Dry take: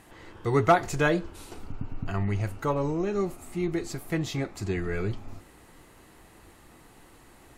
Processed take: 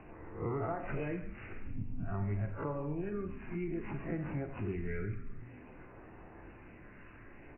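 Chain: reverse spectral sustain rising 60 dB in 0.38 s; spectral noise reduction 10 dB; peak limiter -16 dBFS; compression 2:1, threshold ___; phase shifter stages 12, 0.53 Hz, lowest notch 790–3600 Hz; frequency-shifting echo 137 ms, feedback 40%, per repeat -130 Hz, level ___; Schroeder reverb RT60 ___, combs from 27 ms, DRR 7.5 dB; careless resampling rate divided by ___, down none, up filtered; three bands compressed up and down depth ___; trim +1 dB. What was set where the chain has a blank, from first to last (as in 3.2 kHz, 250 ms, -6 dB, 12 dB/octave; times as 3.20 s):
-44 dBFS, -14 dB, 0.6 s, 8×, 40%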